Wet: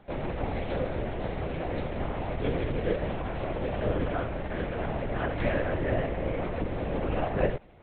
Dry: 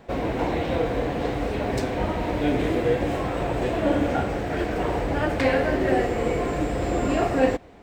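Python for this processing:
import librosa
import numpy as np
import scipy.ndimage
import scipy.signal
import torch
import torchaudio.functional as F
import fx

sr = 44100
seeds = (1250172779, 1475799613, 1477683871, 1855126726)

y = fx.lpc_vocoder(x, sr, seeds[0], excitation='whisper', order=8)
y = y * 10.0 ** (-6.0 / 20.0)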